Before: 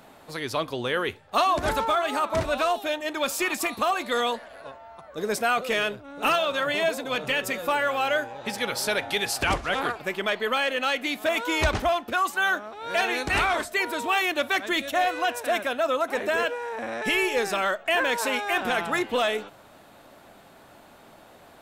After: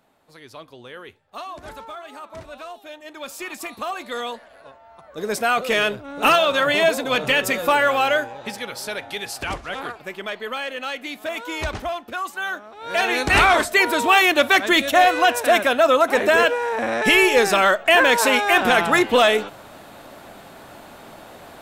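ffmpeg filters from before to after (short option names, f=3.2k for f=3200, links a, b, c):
-af "volume=19.5dB,afade=t=in:st=2.77:d=1.2:silence=0.354813,afade=t=in:st=4.82:d=1.24:silence=0.298538,afade=t=out:st=7.92:d=0.74:silence=0.298538,afade=t=in:st=12.68:d=0.79:silence=0.237137"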